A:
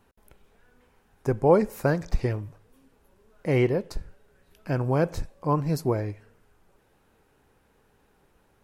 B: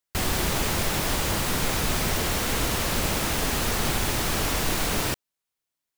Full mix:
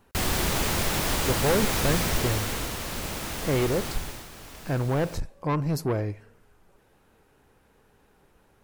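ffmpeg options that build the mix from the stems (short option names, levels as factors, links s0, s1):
-filter_complex "[0:a]asoftclip=type=tanh:threshold=0.0708,volume=1.33[s0];[1:a]volume=0.944,afade=t=out:st=1.96:d=0.8:silence=0.446684,afade=t=out:st=3.81:d=0.48:silence=0.266073[s1];[s0][s1]amix=inputs=2:normalize=0"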